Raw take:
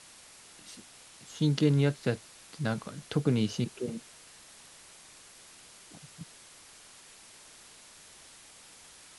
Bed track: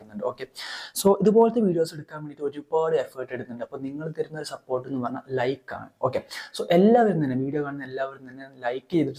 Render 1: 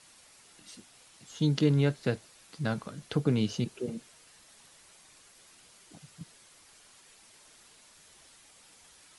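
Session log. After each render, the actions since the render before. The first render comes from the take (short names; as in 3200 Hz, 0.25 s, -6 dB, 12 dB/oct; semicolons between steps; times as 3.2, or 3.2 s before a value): denoiser 6 dB, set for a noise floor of -54 dBFS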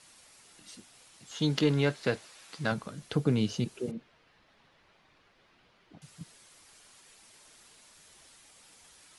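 1.31–2.72 overdrive pedal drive 11 dB, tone 5000 Hz, clips at -12.5 dBFS; 3.91–6.02 air absorption 310 m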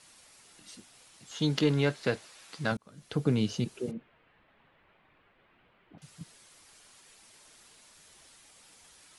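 2.77–3.27 fade in; 3.93–5.98 LPF 3000 Hz 24 dB/oct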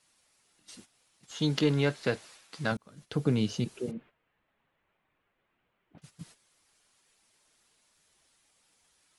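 gate -52 dBFS, range -12 dB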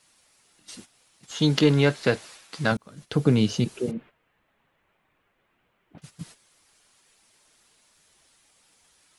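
gain +7 dB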